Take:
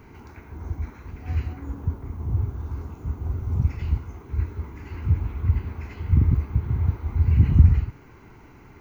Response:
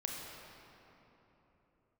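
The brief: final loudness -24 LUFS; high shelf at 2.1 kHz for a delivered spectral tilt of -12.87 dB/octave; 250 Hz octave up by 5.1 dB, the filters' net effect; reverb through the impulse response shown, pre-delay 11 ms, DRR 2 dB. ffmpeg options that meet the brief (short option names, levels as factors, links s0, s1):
-filter_complex "[0:a]equalizer=f=250:t=o:g=7.5,highshelf=f=2100:g=-4.5,asplit=2[s0][s1];[1:a]atrim=start_sample=2205,adelay=11[s2];[s1][s2]afir=irnorm=-1:irlink=0,volume=0.668[s3];[s0][s3]amix=inputs=2:normalize=0,volume=0.75"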